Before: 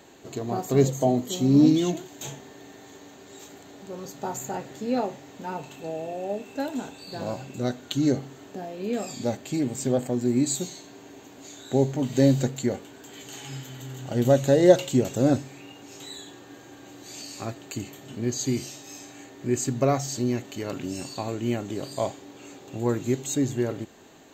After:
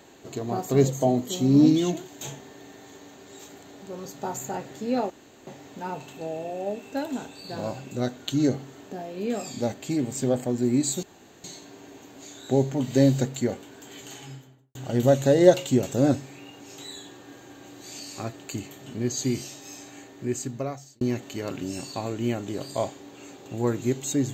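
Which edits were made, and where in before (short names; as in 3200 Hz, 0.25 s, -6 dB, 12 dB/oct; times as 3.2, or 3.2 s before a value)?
5.1 insert room tone 0.37 s
10.66 insert room tone 0.41 s
13.24–13.97 studio fade out
19.21–20.23 fade out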